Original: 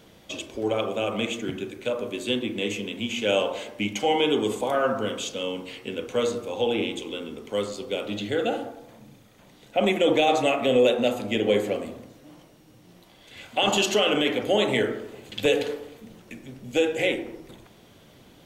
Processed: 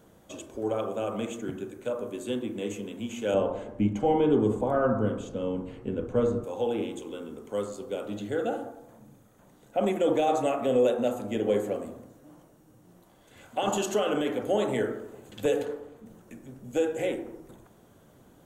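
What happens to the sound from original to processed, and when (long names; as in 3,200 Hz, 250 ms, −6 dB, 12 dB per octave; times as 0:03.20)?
0:03.34–0:06.44: RIAA equalisation playback
0:15.65–0:16.06: high-shelf EQ 5,500 Hz −9.5 dB
whole clip: flat-topped bell 3,300 Hz −10.5 dB; level −3.5 dB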